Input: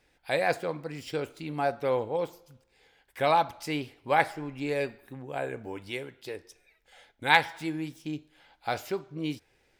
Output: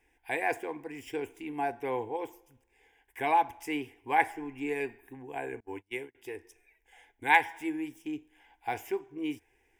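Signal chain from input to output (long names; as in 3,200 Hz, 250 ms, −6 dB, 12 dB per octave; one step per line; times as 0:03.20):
0:05.60–0:06.15: noise gate −38 dBFS, range −30 dB
phaser with its sweep stopped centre 860 Hz, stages 8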